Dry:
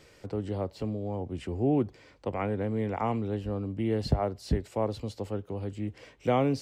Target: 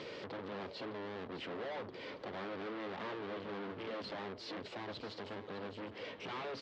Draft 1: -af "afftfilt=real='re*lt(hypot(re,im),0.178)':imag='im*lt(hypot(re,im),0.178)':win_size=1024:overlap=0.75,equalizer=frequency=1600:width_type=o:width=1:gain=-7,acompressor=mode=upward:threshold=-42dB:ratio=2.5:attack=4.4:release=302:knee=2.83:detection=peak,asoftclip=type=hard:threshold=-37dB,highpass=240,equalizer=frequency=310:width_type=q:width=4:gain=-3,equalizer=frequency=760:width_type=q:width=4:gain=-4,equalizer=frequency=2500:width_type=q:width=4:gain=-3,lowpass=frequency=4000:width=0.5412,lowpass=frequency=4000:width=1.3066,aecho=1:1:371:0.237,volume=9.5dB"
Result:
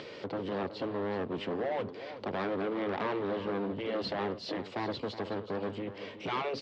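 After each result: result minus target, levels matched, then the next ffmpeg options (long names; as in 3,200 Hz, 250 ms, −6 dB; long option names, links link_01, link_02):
echo 238 ms early; hard clipping: distortion −5 dB
-af "afftfilt=real='re*lt(hypot(re,im),0.178)':imag='im*lt(hypot(re,im),0.178)':win_size=1024:overlap=0.75,equalizer=frequency=1600:width_type=o:width=1:gain=-7,acompressor=mode=upward:threshold=-42dB:ratio=2.5:attack=4.4:release=302:knee=2.83:detection=peak,asoftclip=type=hard:threshold=-37dB,highpass=240,equalizer=frequency=310:width_type=q:width=4:gain=-3,equalizer=frequency=760:width_type=q:width=4:gain=-4,equalizer=frequency=2500:width_type=q:width=4:gain=-3,lowpass=frequency=4000:width=0.5412,lowpass=frequency=4000:width=1.3066,aecho=1:1:609:0.237,volume=9.5dB"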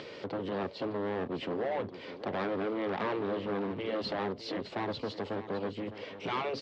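hard clipping: distortion −5 dB
-af "afftfilt=real='re*lt(hypot(re,im),0.178)':imag='im*lt(hypot(re,im),0.178)':win_size=1024:overlap=0.75,equalizer=frequency=1600:width_type=o:width=1:gain=-7,acompressor=mode=upward:threshold=-42dB:ratio=2.5:attack=4.4:release=302:knee=2.83:detection=peak,asoftclip=type=hard:threshold=-48.5dB,highpass=240,equalizer=frequency=310:width_type=q:width=4:gain=-3,equalizer=frequency=760:width_type=q:width=4:gain=-4,equalizer=frequency=2500:width_type=q:width=4:gain=-3,lowpass=frequency=4000:width=0.5412,lowpass=frequency=4000:width=1.3066,aecho=1:1:609:0.237,volume=9.5dB"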